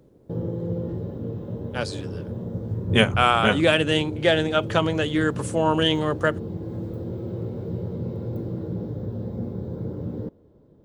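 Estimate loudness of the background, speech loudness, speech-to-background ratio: −31.5 LKFS, −22.0 LKFS, 9.5 dB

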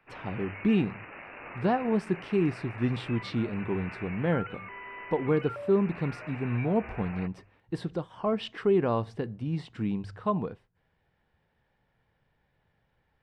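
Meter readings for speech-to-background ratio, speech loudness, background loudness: 12.5 dB, −30.0 LKFS, −42.5 LKFS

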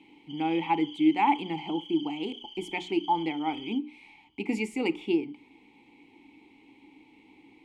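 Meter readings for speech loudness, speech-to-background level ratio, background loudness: −29.5 LKFS, 14.5 dB, −44.0 LKFS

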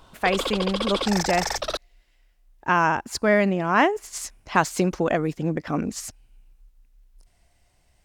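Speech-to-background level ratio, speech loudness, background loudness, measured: 4.0 dB, −24.0 LKFS, −28.0 LKFS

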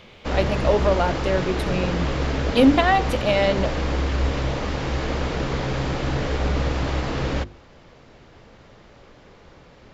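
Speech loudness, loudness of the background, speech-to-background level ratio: −22.0 LKFS, −25.5 LKFS, 3.5 dB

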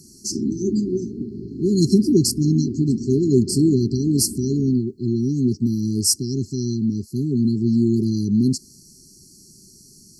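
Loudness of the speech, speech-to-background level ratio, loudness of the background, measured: −20.5 LKFS, 11.0 dB, −31.5 LKFS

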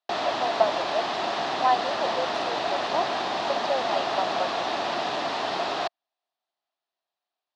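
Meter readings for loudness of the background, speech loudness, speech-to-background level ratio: −27.5 LKFS, −30.0 LKFS, −2.5 dB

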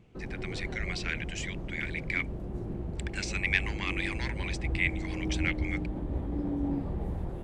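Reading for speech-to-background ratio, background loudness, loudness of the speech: 2.0 dB, −36.0 LKFS, −34.0 LKFS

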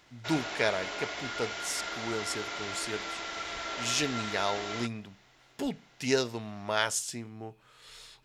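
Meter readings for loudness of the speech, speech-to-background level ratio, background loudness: −33.0 LKFS, 3.0 dB, −36.0 LKFS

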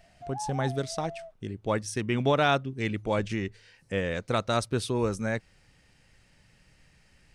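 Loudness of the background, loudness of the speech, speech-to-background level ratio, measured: −40.5 LKFS, −29.5 LKFS, 11.0 dB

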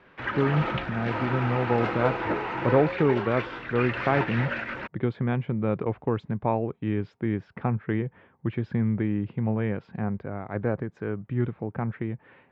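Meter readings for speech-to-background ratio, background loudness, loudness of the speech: 2.0 dB, −30.5 LKFS, −28.5 LKFS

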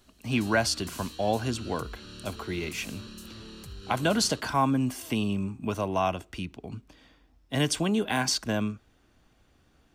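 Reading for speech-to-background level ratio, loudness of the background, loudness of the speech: 15.5 dB, −44.0 LKFS, −28.5 LKFS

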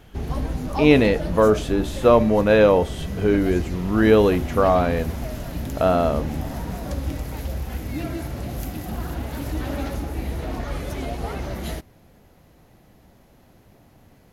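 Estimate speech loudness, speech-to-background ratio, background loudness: −19.0 LKFS, 11.0 dB, −30.0 LKFS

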